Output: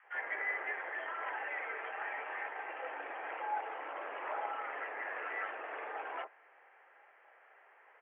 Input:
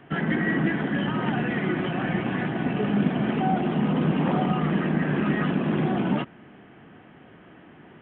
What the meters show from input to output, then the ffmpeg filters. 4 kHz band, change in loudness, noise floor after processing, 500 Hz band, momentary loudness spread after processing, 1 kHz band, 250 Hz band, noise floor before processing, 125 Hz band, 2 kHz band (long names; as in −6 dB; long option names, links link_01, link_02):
can't be measured, −14.5 dB, −63 dBFS, −15.5 dB, 6 LU, −8.5 dB, −38.5 dB, −50 dBFS, below −40 dB, −7.0 dB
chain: -filter_complex "[0:a]acrossover=split=850[link_01][link_02];[link_01]adelay=30[link_03];[link_03][link_02]amix=inputs=2:normalize=0,highpass=frequency=560:width_type=q:width=0.5412,highpass=frequency=560:width_type=q:width=1.307,lowpass=frequency=2300:width_type=q:width=0.5176,lowpass=frequency=2300:width_type=q:width=0.7071,lowpass=frequency=2300:width_type=q:width=1.932,afreqshift=87,volume=-6dB"